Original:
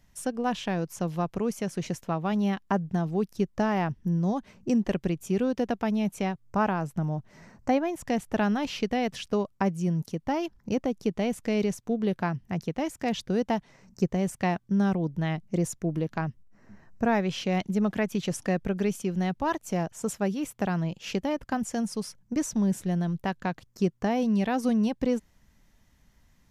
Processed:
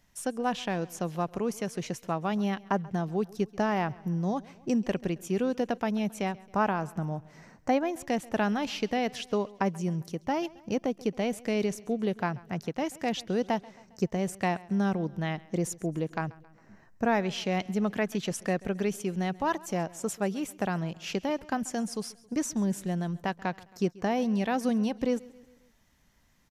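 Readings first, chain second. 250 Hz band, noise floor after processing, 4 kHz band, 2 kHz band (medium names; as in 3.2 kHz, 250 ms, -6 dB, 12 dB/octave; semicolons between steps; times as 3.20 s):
-3.0 dB, -60 dBFS, 0.0 dB, 0.0 dB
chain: bass shelf 180 Hz -7.5 dB; feedback delay 135 ms, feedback 53%, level -22 dB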